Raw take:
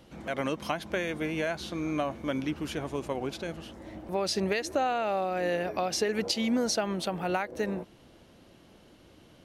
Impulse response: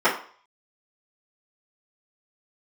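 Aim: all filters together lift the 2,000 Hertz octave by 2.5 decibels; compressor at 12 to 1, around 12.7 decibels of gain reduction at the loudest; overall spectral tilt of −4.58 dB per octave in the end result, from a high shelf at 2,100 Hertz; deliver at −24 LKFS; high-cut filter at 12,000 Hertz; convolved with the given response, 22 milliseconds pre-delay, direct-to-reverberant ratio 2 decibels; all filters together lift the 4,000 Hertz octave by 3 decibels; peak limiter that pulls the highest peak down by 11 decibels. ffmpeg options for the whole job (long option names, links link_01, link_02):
-filter_complex "[0:a]lowpass=12000,equalizer=frequency=2000:width_type=o:gain=4,highshelf=frequency=2100:gain=-5,equalizer=frequency=4000:width_type=o:gain=8,acompressor=threshold=-36dB:ratio=12,alimiter=level_in=9dB:limit=-24dB:level=0:latency=1,volume=-9dB,asplit=2[link_01][link_02];[1:a]atrim=start_sample=2205,adelay=22[link_03];[link_02][link_03]afir=irnorm=-1:irlink=0,volume=-21.5dB[link_04];[link_01][link_04]amix=inputs=2:normalize=0,volume=17dB"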